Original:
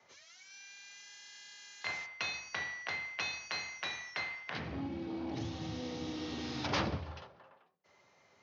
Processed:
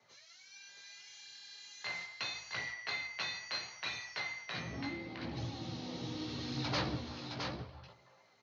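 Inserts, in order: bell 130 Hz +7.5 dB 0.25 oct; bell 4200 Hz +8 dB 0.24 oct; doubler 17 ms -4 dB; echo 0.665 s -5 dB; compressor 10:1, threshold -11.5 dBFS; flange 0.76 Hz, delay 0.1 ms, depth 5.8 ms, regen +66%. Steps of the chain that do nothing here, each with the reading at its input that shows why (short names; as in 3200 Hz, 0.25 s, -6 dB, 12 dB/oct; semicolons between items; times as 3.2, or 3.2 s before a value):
compressor, threshold -11.5 dBFS: input peak -17.5 dBFS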